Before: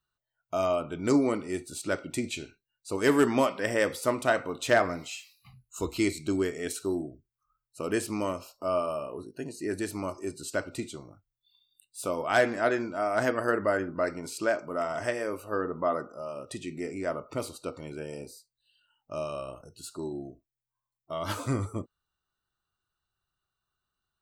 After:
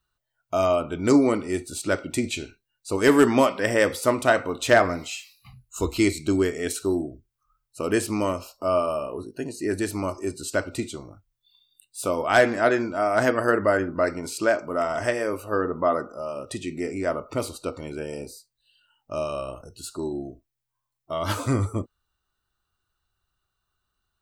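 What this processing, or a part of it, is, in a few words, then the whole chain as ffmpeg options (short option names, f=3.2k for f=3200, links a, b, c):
low shelf boost with a cut just above: -af "lowshelf=f=100:g=7,equalizer=f=150:t=o:w=0.53:g=-4.5,volume=5.5dB"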